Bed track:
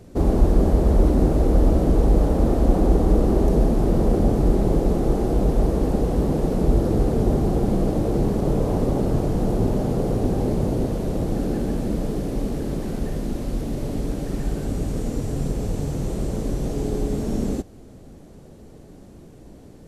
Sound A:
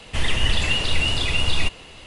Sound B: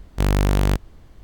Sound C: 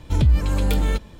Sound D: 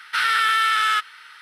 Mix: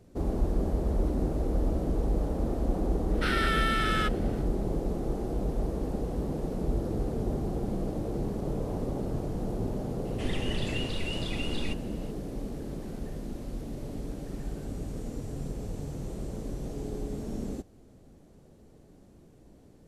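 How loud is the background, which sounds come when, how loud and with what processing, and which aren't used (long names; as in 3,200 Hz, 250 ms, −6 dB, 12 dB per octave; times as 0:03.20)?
bed track −11 dB
0:03.08: mix in D −10 dB, fades 0.10 s
0:10.05: mix in A −14.5 dB
not used: B, C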